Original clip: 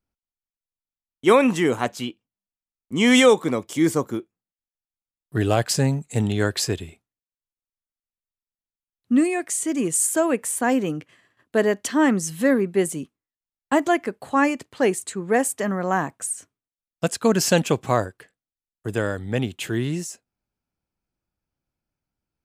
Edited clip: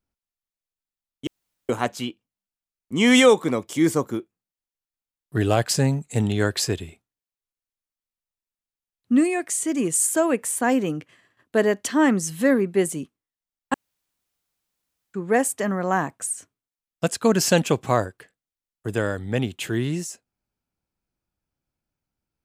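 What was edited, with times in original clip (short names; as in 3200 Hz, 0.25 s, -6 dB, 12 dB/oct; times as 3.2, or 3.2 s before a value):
1.27–1.69 room tone
13.74–15.14 room tone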